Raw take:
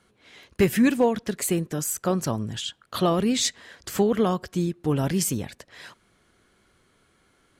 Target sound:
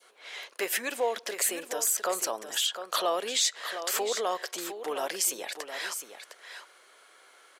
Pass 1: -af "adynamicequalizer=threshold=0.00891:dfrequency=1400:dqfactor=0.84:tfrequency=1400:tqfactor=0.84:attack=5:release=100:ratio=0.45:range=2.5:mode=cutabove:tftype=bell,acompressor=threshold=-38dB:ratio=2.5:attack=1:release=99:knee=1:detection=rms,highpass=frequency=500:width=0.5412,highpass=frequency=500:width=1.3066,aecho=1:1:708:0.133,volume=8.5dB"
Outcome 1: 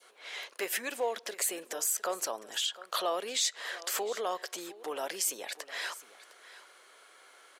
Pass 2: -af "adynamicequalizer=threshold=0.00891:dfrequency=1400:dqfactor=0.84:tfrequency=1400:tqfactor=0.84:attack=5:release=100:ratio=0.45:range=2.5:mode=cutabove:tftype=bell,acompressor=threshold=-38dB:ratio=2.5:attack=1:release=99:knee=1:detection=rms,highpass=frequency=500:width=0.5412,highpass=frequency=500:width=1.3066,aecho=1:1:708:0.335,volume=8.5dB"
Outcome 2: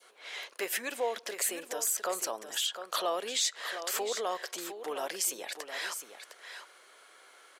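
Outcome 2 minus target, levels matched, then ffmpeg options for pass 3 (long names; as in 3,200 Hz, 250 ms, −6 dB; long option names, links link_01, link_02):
downward compressor: peak gain reduction +3.5 dB
-af "adynamicequalizer=threshold=0.00891:dfrequency=1400:dqfactor=0.84:tfrequency=1400:tqfactor=0.84:attack=5:release=100:ratio=0.45:range=2.5:mode=cutabove:tftype=bell,acompressor=threshold=-32dB:ratio=2.5:attack=1:release=99:knee=1:detection=rms,highpass=frequency=500:width=0.5412,highpass=frequency=500:width=1.3066,aecho=1:1:708:0.335,volume=8.5dB"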